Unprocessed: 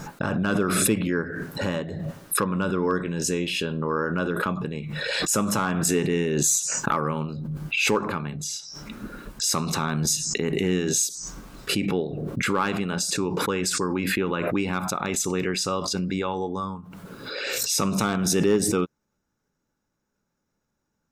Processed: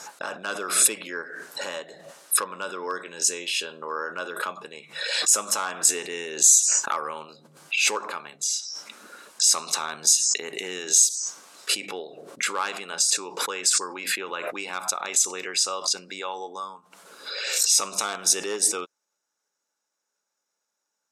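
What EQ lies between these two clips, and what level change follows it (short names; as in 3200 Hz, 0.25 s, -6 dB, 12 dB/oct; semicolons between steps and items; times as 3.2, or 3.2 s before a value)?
Chebyshev band-pass 610–8800 Hz, order 2; high shelf 3600 Hz +12 dB; -3.0 dB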